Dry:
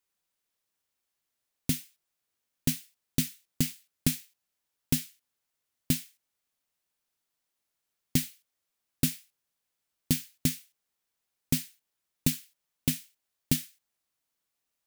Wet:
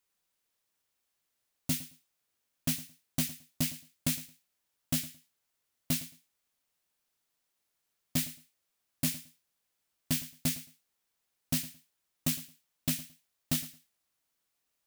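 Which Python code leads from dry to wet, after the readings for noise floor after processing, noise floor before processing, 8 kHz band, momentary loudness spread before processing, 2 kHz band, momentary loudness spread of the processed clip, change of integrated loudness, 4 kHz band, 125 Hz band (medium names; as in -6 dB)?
-82 dBFS, -84 dBFS, -1.5 dB, 8 LU, -1.0 dB, 11 LU, -2.5 dB, -1.5 dB, -5.0 dB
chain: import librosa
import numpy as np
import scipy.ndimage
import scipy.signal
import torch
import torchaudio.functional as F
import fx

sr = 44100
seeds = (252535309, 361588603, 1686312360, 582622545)

y = np.clip(x, -10.0 ** (-26.5 / 20.0), 10.0 ** (-26.5 / 20.0))
y = fx.echo_feedback(y, sr, ms=110, feedback_pct=17, wet_db=-17)
y = y * librosa.db_to_amplitude(2.0)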